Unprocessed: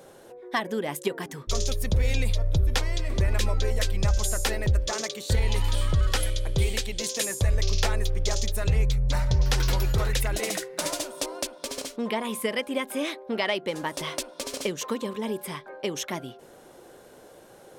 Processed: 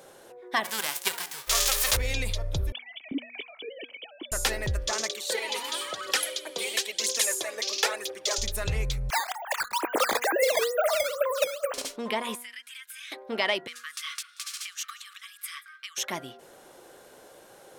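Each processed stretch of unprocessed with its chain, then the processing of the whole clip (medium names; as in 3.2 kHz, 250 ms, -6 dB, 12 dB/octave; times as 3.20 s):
0.63–1.95 s: formants flattened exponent 0.3 + peaking EQ 180 Hz -13.5 dB 1.8 oct + flutter echo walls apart 11 m, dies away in 0.23 s
2.72–4.32 s: formants replaced by sine waves + cascade formant filter i
5.10–8.38 s: high-pass 290 Hz 24 dB/octave + phaser 1 Hz, delay 4.4 ms, feedback 57%
9.10–11.74 s: formants replaced by sine waves + Chebyshev band-pass 340–1600 Hz + decimation with a swept rate 9×, swing 160% 2.2 Hz
12.35–13.12 s: steep high-pass 1.4 kHz 48 dB/octave + compression 12:1, threshold -41 dBFS + comb 7 ms, depth 49%
13.67–15.98 s: compression 2.5:1, threshold -31 dBFS + brick-wall FIR high-pass 1.1 kHz + delay 182 ms -22 dB
whole clip: bass shelf 450 Hz -9 dB; de-hum 241 Hz, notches 8; trim +2 dB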